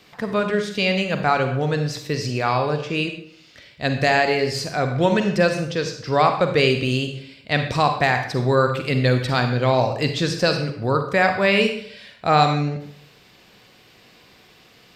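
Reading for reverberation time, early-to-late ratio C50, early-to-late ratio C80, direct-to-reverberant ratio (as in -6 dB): 0.65 s, 7.0 dB, 10.0 dB, 5.5 dB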